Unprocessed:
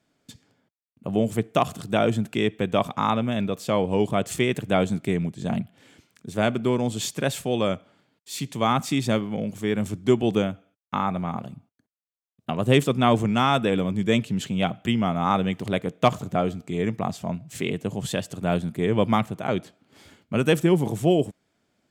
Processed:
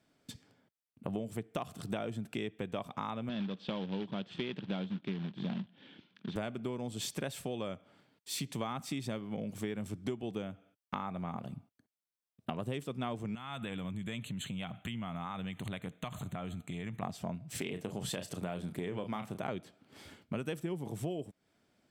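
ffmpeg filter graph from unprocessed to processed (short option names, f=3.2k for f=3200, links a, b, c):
-filter_complex "[0:a]asettb=1/sr,asplit=3[a][b][c];[a]atrim=end=3.294[d];[b]atrim=start=3.29:end=6.36,asetpts=PTS-STARTPTS,afade=t=in:d=0.004:c=qsin,afade=t=out:st=3.066:d=0.004:c=qsin,acrusher=bits=2:mode=log:mix=0:aa=0.000001,highpass=170,equalizer=f=190:t=q:w=4:g=8,equalizer=f=460:t=q:w=4:g=-4,equalizer=f=680:t=q:w=4:g=-6,equalizer=f=1.2k:t=q:w=4:g=-5,equalizer=f=2.1k:t=q:w=4:g=-5,equalizer=f=3.4k:t=q:w=4:g=6,lowpass=f=3.7k:w=0.5412,lowpass=f=3.7k:w=1.3066[e];[c]atrim=start=6.356[f];[d][e]acrossfade=d=0.004:c1=hsin:c2=qsin[g];[g][f]acrossfade=d=0.004:c1=qsin:c2=hsin,asettb=1/sr,asplit=3[h][i][j];[h]atrim=end=13.354[k];[i]atrim=start=13.35:end=17.03,asetpts=PTS-STARTPTS,afade=t=in:d=0.004:c=qsin,afade=t=out:st=3.676:d=0.004:c=qsin,equalizer=f=420:t=o:w=1.6:g=-11,acompressor=threshold=-33dB:ratio=6:attack=3.2:release=140:knee=1:detection=peak,asuperstop=centerf=5200:order=20:qfactor=2.9[l];[j]atrim=start=17.026[m];[k][l]acrossfade=d=0.004:c1=hsin:c2=qsin[n];[n][m]acrossfade=d=0.004:c1=qsin:c2=hsin,asettb=1/sr,asplit=3[o][p][q];[o]atrim=end=17.584[r];[p]atrim=start=17.58:end=19.38,asetpts=PTS-STARTPTS,afade=t=in:d=0.004:c=qsin,afade=t=out:st=1.796:d=0.004:c=qsin,lowshelf=f=150:g=-6.5,asplit=2[s][t];[t]adelay=33,volume=-10dB[u];[s][u]amix=inputs=2:normalize=0,atrim=end_sample=79380,acompressor=threshold=-26dB:ratio=2:attack=3.2:release=140:knee=1:detection=peak[v];[q]atrim=start=19.376[w];[r][v]acrossfade=d=0.004:c1=hsin:c2=qsin[x];[x][w]acrossfade=d=0.004:c1=qsin:c2=hsin,bandreject=f=6.8k:w=11,acompressor=threshold=-32dB:ratio=10,volume=-2dB"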